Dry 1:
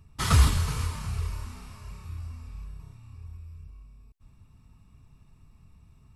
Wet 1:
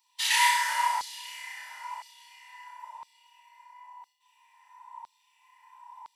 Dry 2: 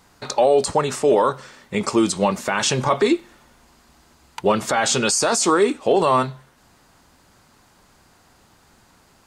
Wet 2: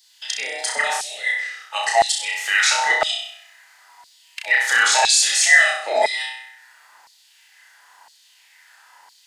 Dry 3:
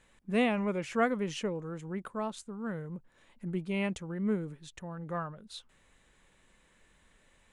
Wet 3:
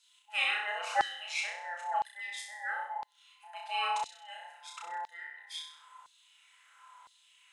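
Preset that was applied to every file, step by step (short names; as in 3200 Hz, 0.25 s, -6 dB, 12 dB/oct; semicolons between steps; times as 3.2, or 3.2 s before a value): band inversion scrambler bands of 1000 Hz; flutter echo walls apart 5.5 m, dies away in 0.6 s; LFO high-pass saw down 0.99 Hz 920–4300 Hz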